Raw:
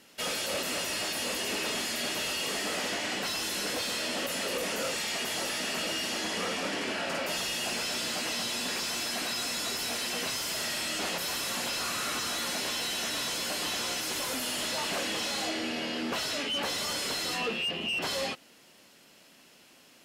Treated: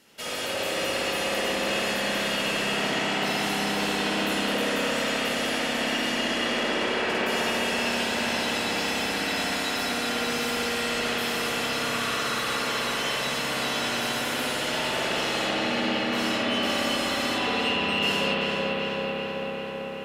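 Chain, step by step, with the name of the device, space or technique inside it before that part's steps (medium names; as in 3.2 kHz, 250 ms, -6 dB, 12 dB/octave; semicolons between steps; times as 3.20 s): dub delay into a spring reverb (filtered feedback delay 384 ms, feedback 77%, low-pass 4.6 kHz, level -4 dB; spring tank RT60 3.4 s, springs 59 ms, chirp 65 ms, DRR -6 dB); trim -2 dB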